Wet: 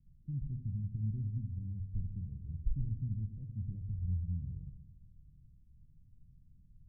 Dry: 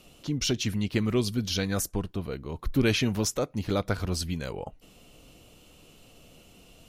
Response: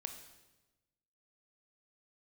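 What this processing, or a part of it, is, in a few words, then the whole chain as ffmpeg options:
club heard from the street: -filter_complex "[0:a]alimiter=limit=-19dB:level=0:latency=1,lowpass=frequency=140:width=0.5412,lowpass=frequency=140:width=1.3066[link_01];[1:a]atrim=start_sample=2205[link_02];[link_01][link_02]afir=irnorm=-1:irlink=0,volume=1.5dB"

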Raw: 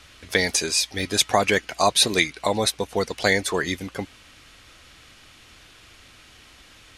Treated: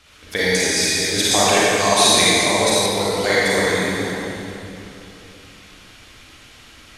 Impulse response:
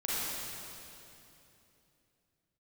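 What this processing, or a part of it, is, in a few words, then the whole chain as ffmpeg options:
stairwell: -filter_complex "[1:a]atrim=start_sample=2205[link_01];[0:a][link_01]afir=irnorm=-1:irlink=0,asettb=1/sr,asplit=3[link_02][link_03][link_04];[link_02]atrim=end=1.314[link_05];[link_03]atrim=start=1.31:end=2.86,asetpts=PTS-STARTPTS,afade=type=in:duration=0.004:curve=qsin,afade=type=out:start_time=1.546:duration=0.004:curve=qsin,equalizer=frequency=7200:width=1.5:gain=6[link_06];[link_04]atrim=start=2.856[link_07];[link_05][link_06]acrossfade=duration=0.004:curve1=hsin:curve2=qsin[link_08];[link_08][link_07]acrossfade=duration=0.004:curve1=qsin:curve2=hsin,volume=-2dB"

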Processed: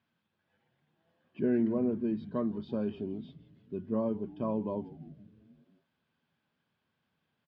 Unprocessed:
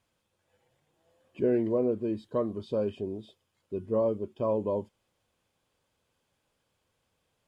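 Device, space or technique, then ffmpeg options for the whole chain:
frequency-shifting delay pedal into a guitar cabinet: -filter_complex "[0:a]asplit=7[link_01][link_02][link_03][link_04][link_05][link_06][link_07];[link_02]adelay=167,afreqshift=-130,volume=-18dB[link_08];[link_03]adelay=334,afreqshift=-260,volume=-22dB[link_09];[link_04]adelay=501,afreqshift=-390,volume=-26dB[link_10];[link_05]adelay=668,afreqshift=-520,volume=-30dB[link_11];[link_06]adelay=835,afreqshift=-650,volume=-34.1dB[link_12];[link_07]adelay=1002,afreqshift=-780,volume=-38.1dB[link_13];[link_01][link_08][link_09][link_10][link_11][link_12][link_13]amix=inputs=7:normalize=0,highpass=98,equalizer=frequency=160:width_type=q:width=4:gain=8,equalizer=frequency=230:width_type=q:width=4:gain=8,equalizer=frequency=510:width_type=q:width=4:gain=-7,equalizer=frequency=1600:width_type=q:width=4:gain=6,lowpass=frequency=4400:width=0.5412,lowpass=frequency=4400:width=1.3066,volume=-4dB"

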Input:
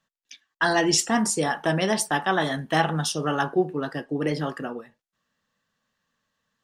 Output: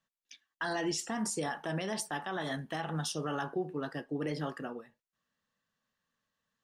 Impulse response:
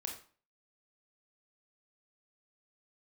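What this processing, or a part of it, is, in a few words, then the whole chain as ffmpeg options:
stacked limiters: -af "alimiter=limit=-12.5dB:level=0:latency=1:release=144,alimiter=limit=-17dB:level=0:latency=1:release=58,volume=-8dB"

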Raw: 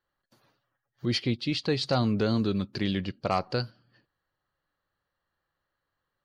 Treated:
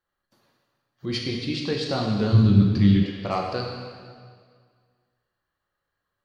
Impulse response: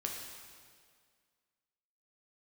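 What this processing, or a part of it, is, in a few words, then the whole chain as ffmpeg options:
stairwell: -filter_complex "[1:a]atrim=start_sample=2205[link_01];[0:a][link_01]afir=irnorm=-1:irlink=0,asplit=3[link_02][link_03][link_04];[link_02]afade=type=out:start_time=2.32:duration=0.02[link_05];[link_03]asubboost=boost=9:cutoff=200,afade=type=in:start_time=2.32:duration=0.02,afade=type=out:start_time=3.02:duration=0.02[link_06];[link_04]afade=type=in:start_time=3.02:duration=0.02[link_07];[link_05][link_06][link_07]amix=inputs=3:normalize=0"

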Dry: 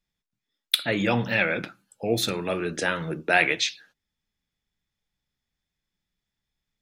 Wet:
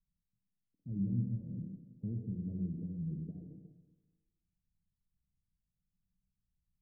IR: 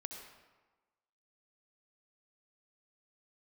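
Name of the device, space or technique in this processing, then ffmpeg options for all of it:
club heard from the street: -filter_complex "[0:a]alimiter=limit=-16.5dB:level=0:latency=1:release=377,lowpass=frequency=190:width=0.5412,lowpass=frequency=190:width=1.3066[link_01];[1:a]atrim=start_sample=2205[link_02];[link_01][link_02]afir=irnorm=-1:irlink=0,volume=4.5dB"

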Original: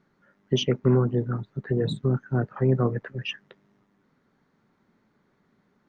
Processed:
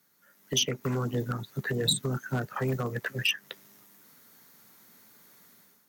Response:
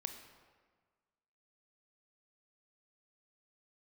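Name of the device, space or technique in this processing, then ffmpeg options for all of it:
FM broadcast chain: -filter_complex "[0:a]highpass=frequency=50:width=0.5412,highpass=frequency=50:width=1.3066,lowshelf=frequency=250:gain=-7.5,bandreject=frequency=370:width=12,dynaudnorm=framelen=170:gausssize=5:maxgain=11.5dB,acrossover=split=140|2100[link_01][link_02][link_03];[link_01]acompressor=threshold=-25dB:ratio=4[link_04];[link_02]acompressor=threshold=-21dB:ratio=4[link_05];[link_03]acompressor=threshold=-28dB:ratio=4[link_06];[link_04][link_05][link_06]amix=inputs=3:normalize=0,aemphasis=mode=production:type=75fm,alimiter=limit=-14dB:level=0:latency=1:release=244,asoftclip=type=hard:threshold=-16.5dB,lowpass=frequency=15000:width=0.5412,lowpass=frequency=15000:width=1.3066,aemphasis=mode=production:type=75fm,volume=-5dB"

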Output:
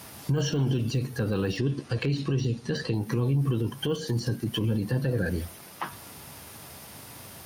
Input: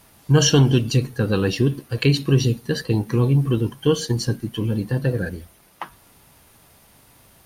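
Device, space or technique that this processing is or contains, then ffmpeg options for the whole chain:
broadcast voice chain: -filter_complex "[0:a]asettb=1/sr,asplit=3[link_01][link_02][link_03];[link_01]atrim=end=1.574[link_04];[link_02]atrim=start=1.57:end=2.94,asetpts=PTS-STARTPTS,afade=type=in:duration=0.004:curve=qsin,afade=type=out:start_time=1.366:duration=0.004:curve=qsin,lowpass=frequency=8100:width=0.5412,lowpass=frequency=8100:width=1.3066[link_05];[link_03]atrim=start=2.936[link_06];[link_04][link_05]acrossfade=duration=0.004:curve1=hsin:curve2=qsin[link_07];[link_07][link_06]acrossfade=duration=0.004:curve1=qsin:curve2=hsin,highpass=frequency=71:width=0.5412,highpass=frequency=71:width=1.3066,deesser=0.9,acompressor=threshold=-29dB:ratio=4,equalizer=frequency=5200:width_type=o:width=0.29:gain=3.5,alimiter=level_in=2.5dB:limit=-24dB:level=0:latency=1:release=20,volume=-2.5dB,volume=8dB"

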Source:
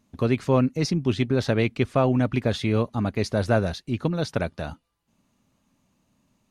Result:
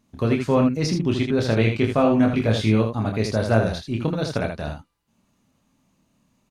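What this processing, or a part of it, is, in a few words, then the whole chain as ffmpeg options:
slapback doubling: -filter_complex "[0:a]asettb=1/sr,asplit=3[link_01][link_02][link_03];[link_01]atrim=end=1.594[link_04];[link_02]atrim=start=1.59:end=2.75,asetpts=PTS-STARTPTS,afade=type=in:duration=0.004:curve=qsin,afade=type=out:start_time=1.156:duration=0.004:curve=qsin,asplit=2[link_05][link_06];[link_06]adelay=19,volume=-5dB[link_07];[link_05][link_07]amix=inputs=2:normalize=0,atrim=end_sample=51156[link_08];[link_03]atrim=start=2.746[link_09];[link_04][link_08]acrossfade=duration=0.004:curve1=hsin:curve2=qsin[link_10];[link_10][link_09]acrossfade=duration=0.004:curve1=qsin:curve2=hsin,asplit=3[link_11][link_12][link_13];[link_12]adelay=27,volume=-5dB[link_14];[link_13]adelay=79,volume=-5.5dB[link_15];[link_11][link_14][link_15]amix=inputs=3:normalize=0"

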